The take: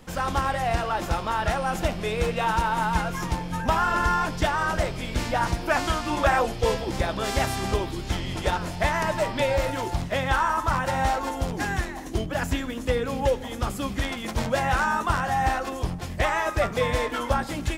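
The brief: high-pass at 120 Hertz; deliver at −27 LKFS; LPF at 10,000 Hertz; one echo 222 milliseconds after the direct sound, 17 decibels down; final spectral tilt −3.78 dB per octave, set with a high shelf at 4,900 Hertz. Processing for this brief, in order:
high-pass filter 120 Hz
low-pass filter 10,000 Hz
high-shelf EQ 4,900 Hz −8.5 dB
single-tap delay 222 ms −17 dB

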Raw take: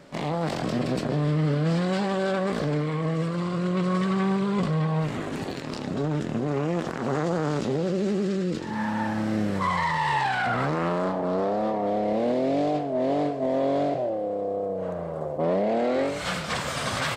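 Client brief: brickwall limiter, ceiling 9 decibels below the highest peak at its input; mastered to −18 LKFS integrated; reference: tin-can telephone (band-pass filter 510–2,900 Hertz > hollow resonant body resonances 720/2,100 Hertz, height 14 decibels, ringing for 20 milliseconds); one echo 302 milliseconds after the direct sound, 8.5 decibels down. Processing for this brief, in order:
brickwall limiter −24 dBFS
band-pass filter 510–2,900 Hz
single-tap delay 302 ms −8.5 dB
hollow resonant body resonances 720/2,100 Hz, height 14 dB, ringing for 20 ms
level +10.5 dB

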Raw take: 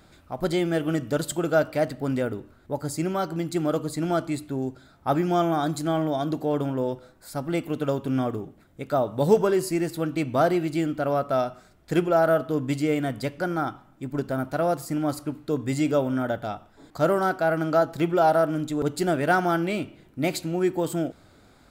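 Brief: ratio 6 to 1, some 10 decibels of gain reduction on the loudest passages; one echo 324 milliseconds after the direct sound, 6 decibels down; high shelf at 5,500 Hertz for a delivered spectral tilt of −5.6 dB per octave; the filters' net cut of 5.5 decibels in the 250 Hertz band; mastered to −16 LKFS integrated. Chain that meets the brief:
parametric band 250 Hz −8.5 dB
high-shelf EQ 5,500 Hz −7.5 dB
downward compressor 6 to 1, threshold −27 dBFS
single-tap delay 324 ms −6 dB
level +16 dB

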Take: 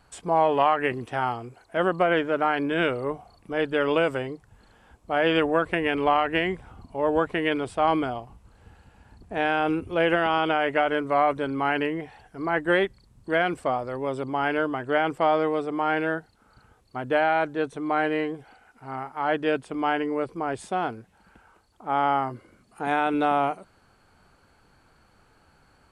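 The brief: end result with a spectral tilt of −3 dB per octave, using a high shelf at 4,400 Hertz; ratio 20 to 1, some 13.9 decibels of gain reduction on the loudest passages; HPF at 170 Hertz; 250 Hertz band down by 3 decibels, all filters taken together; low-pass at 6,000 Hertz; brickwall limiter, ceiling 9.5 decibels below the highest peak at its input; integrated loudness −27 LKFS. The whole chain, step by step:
high-pass filter 170 Hz
low-pass filter 6,000 Hz
parametric band 250 Hz −3.5 dB
high-shelf EQ 4,400 Hz +8.5 dB
downward compressor 20 to 1, threshold −30 dBFS
level +11.5 dB
brickwall limiter −15.5 dBFS

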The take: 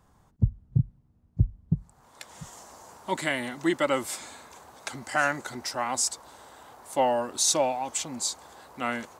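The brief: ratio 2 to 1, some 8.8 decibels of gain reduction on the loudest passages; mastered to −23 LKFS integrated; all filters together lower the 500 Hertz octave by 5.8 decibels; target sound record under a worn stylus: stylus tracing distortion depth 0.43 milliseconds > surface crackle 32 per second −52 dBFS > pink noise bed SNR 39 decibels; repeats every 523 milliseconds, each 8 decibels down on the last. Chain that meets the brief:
parametric band 500 Hz −7.5 dB
downward compressor 2 to 1, threshold −33 dBFS
repeating echo 523 ms, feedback 40%, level −8 dB
stylus tracing distortion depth 0.43 ms
surface crackle 32 per second −52 dBFS
pink noise bed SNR 39 dB
level +13 dB

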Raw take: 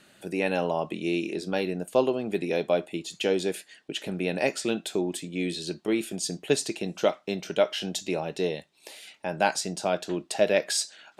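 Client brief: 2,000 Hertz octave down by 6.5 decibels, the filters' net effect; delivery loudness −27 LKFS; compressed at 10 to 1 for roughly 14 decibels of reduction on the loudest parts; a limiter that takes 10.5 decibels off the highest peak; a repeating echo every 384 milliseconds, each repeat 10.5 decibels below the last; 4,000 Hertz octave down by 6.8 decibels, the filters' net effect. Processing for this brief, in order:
parametric band 2,000 Hz −6.5 dB
parametric band 4,000 Hz −7 dB
downward compressor 10 to 1, threshold −32 dBFS
brickwall limiter −29.5 dBFS
repeating echo 384 ms, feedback 30%, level −10.5 dB
level +13.5 dB

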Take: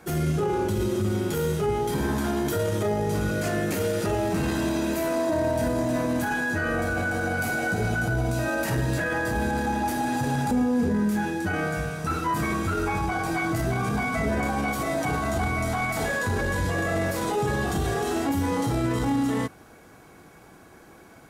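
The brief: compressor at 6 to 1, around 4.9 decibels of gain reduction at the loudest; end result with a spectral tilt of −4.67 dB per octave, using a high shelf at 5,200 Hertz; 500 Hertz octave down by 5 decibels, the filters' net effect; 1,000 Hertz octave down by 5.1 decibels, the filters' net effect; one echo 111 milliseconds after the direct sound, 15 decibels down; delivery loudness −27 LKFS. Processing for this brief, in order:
parametric band 500 Hz −5.5 dB
parametric band 1,000 Hz −5 dB
high-shelf EQ 5,200 Hz +7 dB
downward compressor 6 to 1, threshold −27 dBFS
single-tap delay 111 ms −15 dB
level +4 dB

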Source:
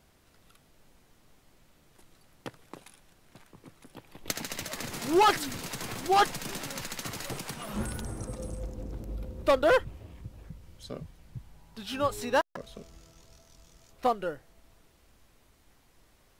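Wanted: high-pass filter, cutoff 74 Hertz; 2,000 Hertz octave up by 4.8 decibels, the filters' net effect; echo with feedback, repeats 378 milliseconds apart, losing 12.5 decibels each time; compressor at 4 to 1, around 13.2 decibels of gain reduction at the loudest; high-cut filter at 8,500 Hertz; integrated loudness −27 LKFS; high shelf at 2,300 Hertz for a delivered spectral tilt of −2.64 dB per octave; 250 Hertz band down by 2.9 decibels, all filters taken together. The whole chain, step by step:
high-pass filter 74 Hz
low-pass filter 8,500 Hz
parametric band 250 Hz −4.5 dB
parametric band 2,000 Hz +3.5 dB
high-shelf EQ 2,300 Hz +6 dB
downward compressor 4 to 1, threshold −32 dBFS
repeating echo 378 ms, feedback 24%, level −12.5 dB
level +10 dB

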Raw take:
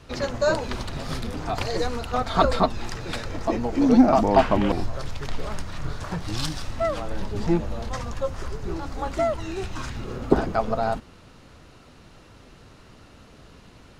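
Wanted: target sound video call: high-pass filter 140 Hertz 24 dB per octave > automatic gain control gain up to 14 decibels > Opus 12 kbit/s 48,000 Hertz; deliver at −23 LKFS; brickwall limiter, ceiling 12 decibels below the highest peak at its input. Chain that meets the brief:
brickwall limiter −13.5 dBFS
high-pass filter 140 Hz 24 dB per octave
automatic gain control gain up to 14 dB
level +6 dB
Opus 12 kbit/s 48,000 Hz

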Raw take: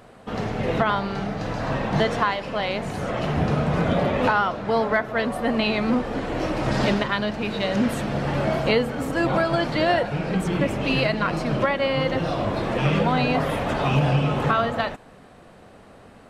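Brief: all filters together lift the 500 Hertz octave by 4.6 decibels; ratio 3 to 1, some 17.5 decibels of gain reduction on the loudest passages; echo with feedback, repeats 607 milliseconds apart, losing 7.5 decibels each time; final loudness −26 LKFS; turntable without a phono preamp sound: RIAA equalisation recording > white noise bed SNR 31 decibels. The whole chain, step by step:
parametric band 500 Hz +8.5 dB
downward compressor 3 to 1, threshold −36 dBFS
RIAA equalisation recording
repeating echo 607 ms, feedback 42%, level −7.5 dB
white noise bed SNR 31 dB
level +9 dB

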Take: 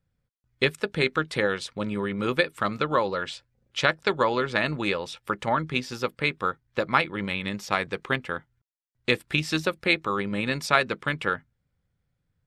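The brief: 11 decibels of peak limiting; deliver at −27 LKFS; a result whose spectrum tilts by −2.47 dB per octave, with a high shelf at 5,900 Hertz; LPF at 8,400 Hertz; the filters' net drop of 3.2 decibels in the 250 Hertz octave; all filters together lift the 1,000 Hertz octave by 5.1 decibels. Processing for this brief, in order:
low-pass filter 8,400 Hz
parametric band 250 Hz −5 dB
parametric band 1,000 Hz +7 dB
high-shelf EQ 5,900 Hz −3.5 dB
brickwall limiter −10.5 dBFS

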